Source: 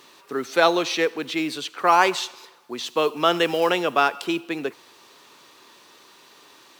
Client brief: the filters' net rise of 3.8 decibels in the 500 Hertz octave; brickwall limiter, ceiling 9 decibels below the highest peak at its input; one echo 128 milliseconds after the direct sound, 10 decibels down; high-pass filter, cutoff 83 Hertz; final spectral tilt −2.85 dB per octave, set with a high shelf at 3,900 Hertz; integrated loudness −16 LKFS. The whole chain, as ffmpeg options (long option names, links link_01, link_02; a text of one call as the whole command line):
ffmpeg -i in.wav -af "highpass=83,equalizer=frequency=500:width_type=o:gain=4.5,highshelf=frequency=3900:gain=5,alimiter=limit=-11dB:level=0:latency=1,aecho=1:1:128:0.316,volume=7dB" out.wav